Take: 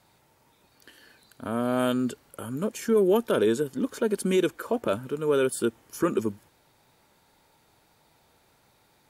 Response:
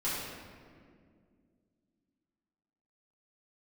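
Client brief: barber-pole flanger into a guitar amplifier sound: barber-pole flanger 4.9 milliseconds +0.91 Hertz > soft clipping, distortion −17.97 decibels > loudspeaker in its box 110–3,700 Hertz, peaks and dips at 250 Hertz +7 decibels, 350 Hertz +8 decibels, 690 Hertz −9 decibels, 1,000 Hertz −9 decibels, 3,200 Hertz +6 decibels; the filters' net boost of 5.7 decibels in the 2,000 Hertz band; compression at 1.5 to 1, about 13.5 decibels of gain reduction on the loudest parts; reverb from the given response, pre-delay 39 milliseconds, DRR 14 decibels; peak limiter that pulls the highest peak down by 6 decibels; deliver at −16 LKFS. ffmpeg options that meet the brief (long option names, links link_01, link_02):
-filter_complex "[0:a]equalizer=frequency=2000:width_type=o:gain=9,acompressor=threshold=-57dB:ratio=1.5,alimiter=level_in=5.5dB:limit=-24dB:level=0:latency=1,volume=-5.5dB,asplit=2[link_01][link_02];[1:a]atrim=start_sample=2205,adelay=39[link_03];[link_02][link_03]afir=irnorm=-1:irlink=0,volume=-21dB[link_04];[link_01][link_04]amix=inputs=2:normalize=0,asplit=2[link_05][link_06];[link_06]adelay=4.9,afreqshift=0.91[link_07];[link_05][link_07]amix=inputs=2:normalize=1,asoftclip=threshold=-34dB,highpass=110,equalizer=frequency=250:width_type=q:width=4:gain=7,equalizer=frequency=350:width_type=q:width=4:gain=8,equalizer=frequency=690:width_type=q:width=4:gain=-9,equalizer=frequency=1000:width_type=q:width=4:gain=-9,equalizer=frequency=3200:width_type=q:width=4:gain=6,lowpass=frequency=3700:width=0.5412,lowpass=frequency=3700:width=1.3066,volume=25dB"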